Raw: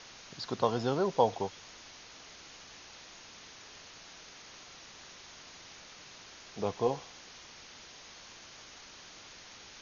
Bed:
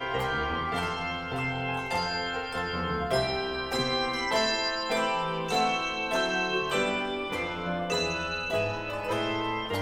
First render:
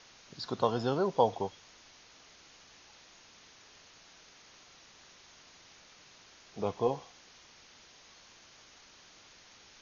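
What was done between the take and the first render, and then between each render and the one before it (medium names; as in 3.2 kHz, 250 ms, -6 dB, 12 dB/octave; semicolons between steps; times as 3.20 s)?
noise print and reduce 6 dB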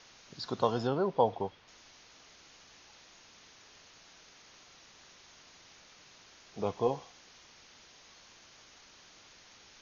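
0.87–1.68 s: distance through air 200 m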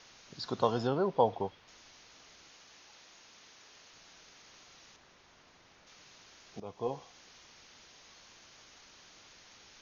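2.49–3.93 s: bass shelf 150 Hz -8 dB; 4.96–5.87 s: treble shelf 3 kHz -11 dB; 6.60–7.21 s: fade in, from -15.5 dB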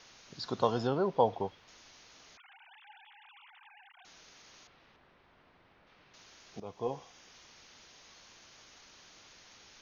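2.37–4.05 s: formants replaced by sine waves; 4.67–6.14 s: distance through air 350 m; 6.80–7.34 s: band-stop 4.2 kHz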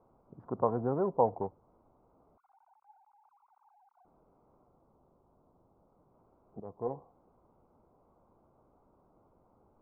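local Wiener filter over 25 samples; inverse Chebyshev low-pass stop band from 4 kHz, stop band 60 dB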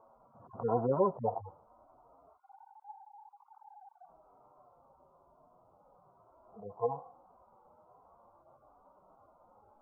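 harmonic-percussive separation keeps harmonic; high-order bell 880 Hz +12 dB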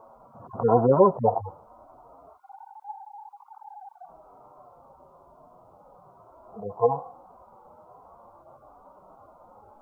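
trim +11 dB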